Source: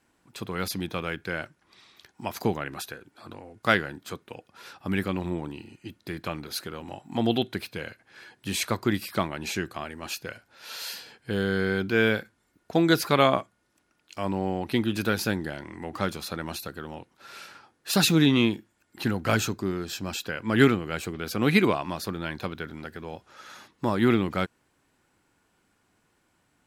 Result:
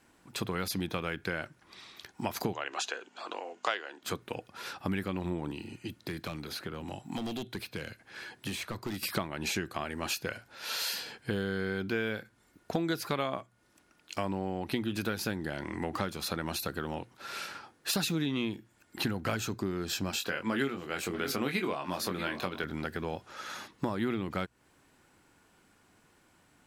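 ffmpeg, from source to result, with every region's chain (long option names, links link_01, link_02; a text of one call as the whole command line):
ffmpeg -i in.wav -filter_complex "[0:a]asettb=1/sr,asplit=3[link_01][link_02][link_03];[link_01]atrim=end=2.534[link_04];[link_02]atrim=start=2.53:end=4.03,asetpts=PTS-STARTPTS,afade=type=in:duration=0.004:curve=qsin,afade=type=out:start_time=1.496:duration=0.004:curve=qsin,aeval=exprs='val(0)+0.00631*(sin(2*PI*50*n/s)+sin(2*PI*2*50*n/s)/2+sin(2*PI*3*50*n/s)/3+sin(2*PI*4*50*n/s)/4+sin(2*PI*5*50*n/s)/5)':channel_layout=same,highpass=frequency=380:width=0.5412,highpass=frequency=380:width=1.3066,equalizer=frequency=720:width_type=q:width=4:gain=3,equalizer=frequency=1000:width_type=q:width=4:gain=4,equalizer=frequency=2900:width_type=q:width=4:gain=9,equalizer=frequency=6800:width_type=q:width=4:gain=9,lowpass=frequency=7400:width=0.5412,lowpass=frequency=7400:width=1.3066[link_05];[link_03]atrim=start=4.026[link_06];[link_04][link_05]acrossfade=duration=0.004:curve1=hsin:curve2=qsin[link_07];[link_07][link_06]acrossfade=duration=0.004:curve1=qsin:curve2=hsin,asettb=1/sr,asplit=3[link_08][link_09][link_10];[link_08]atrim=end=5.514[link_11];[link_09]atrim=start=5.51:end=9.03,asetpts=PTS-STARTPTS,afade=type=in:duration=0.004:curve=qsin,afade=type=out:start_time=3.516:duration=0.004:curve=qsin,volume=23.5dB,asoftclip=hard,volume=-23.5dB,acrossover=split=260|3300[link_12][link_13][link_14];[link_12]acompressor=threshold=-45dB:ratio=4[link_15];[link_13]acompressor=threshold=-45dB:ratio=4[link_16];[link_14]acompressor=threshold=-51dB:ratio=4[link_17];[link_15][link_16][link_17]amix=inputs=3:normalize=0[link_18];[link_10]atrim=start=9.026[link_19];[link_11][link_18]acrossfade=duration=0.004:curve1=hsin:curve2=qsin[link_20];[link_20][link_19]acrossfade=duration=0.004:curve1=qsin:curve2=hsin,asettb=1/sr,asplit=3[link_21][link_22][link_23];[link_21]atrim=end=20.114[link_24];[link_22]atrim=start=20.11:end=22.64,asetpts=PTS-STARTPTS,afade=type=in:duration=0.004:curve=qsin,afade=type=out:start_time=2.526:duration=0.004:curve=qsin,highpass=frequency=250:poles=1,asplit=2[link_25][link_26];[link_26]adelay=22,volume=-6dB[link_27];[link_25][link_27]amix=inputs=2:normalize=0,atrim=end_sample=111573,aecho=1:1:635:0.0841,atrim=end_sample=111573[link_28];[link_23]atrim=start=22.636[link_29];[link_24][link_28]acrossfade=duration=0.004:curve1=hsin:curve2=qsin[link_30];[link_30][link_29]acrossfade=duration=0.004:curve1=qsin:curve2=hsin,bandreject=frequency=60:width_type=h:width=6,bandreject=frequency=120:width_type=h:width=6,acompressor=threshold=-34dB:ratio=6,volume=4.5dB" out.wav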